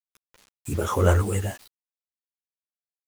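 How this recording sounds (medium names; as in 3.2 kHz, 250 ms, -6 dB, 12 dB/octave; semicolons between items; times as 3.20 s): random-step tremolo 3.5 Hz; a quantiser's noise floor 8-bit, dither none; a shimmering, thickened sound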